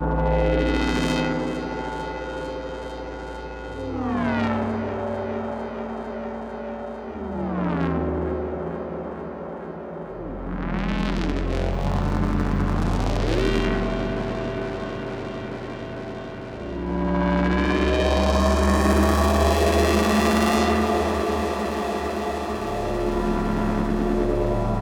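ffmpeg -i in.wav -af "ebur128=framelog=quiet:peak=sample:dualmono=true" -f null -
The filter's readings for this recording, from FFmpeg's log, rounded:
Integrated loudness:
  I:         -21.3 LUFS
  Threshold: -31.4 LUFS
Loudness range:
  LRA:         9.1 LU
  Threshold: -41.5 LUFS
  LRA low:   -25.9 LUFS
  LRA high:  -16.8 LUFS
Sample peak:
  Peak:       -6.0 dBFS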